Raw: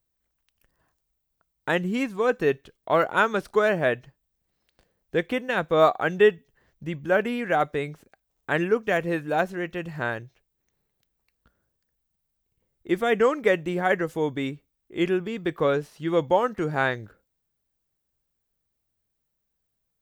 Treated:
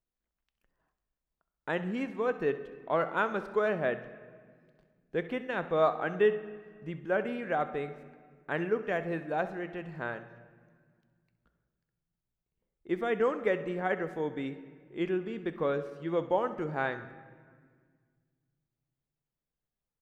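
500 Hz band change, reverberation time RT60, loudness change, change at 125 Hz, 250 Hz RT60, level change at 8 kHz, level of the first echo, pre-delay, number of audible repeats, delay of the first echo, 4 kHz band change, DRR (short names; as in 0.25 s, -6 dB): -7.0 dB, 1.8 s, -7.5 dB, -8.0 dB, 2.5 s, n/a, -16.0 dB, 4 ms, 2, 66 ms, -11.5 dB, 10.5 dB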